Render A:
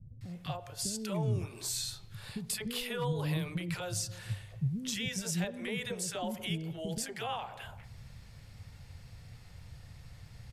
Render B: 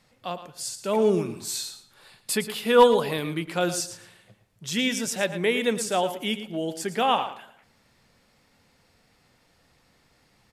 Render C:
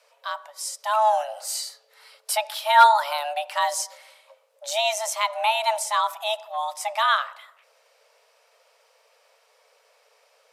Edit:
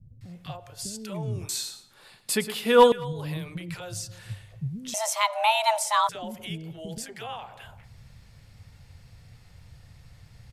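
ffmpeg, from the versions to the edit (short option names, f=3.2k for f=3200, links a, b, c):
-filter_complex "[0:a]asplit=3[a][b][c];[a]atrim=end=1.492[d];[1:a]atrim=start=1.488:end=2.922[e];[b]atrim=start=2.918:end=4.942[f];[2:a]atrim=start=4.938:end=6.092[g];[c]atrim=start=6.088[h];[d][e]acrossfade=d=0.004:c1=hsin:c2=hsin[i];[i][f]acrossfade=d=0.004:c1=hsin:c2=hsin[j];[j][g]acrossfade=d=0.004:c1=hsin:c2=hsin[k];[k][h]acrossfade=d=0.004:c1=hsin:c2=hsin"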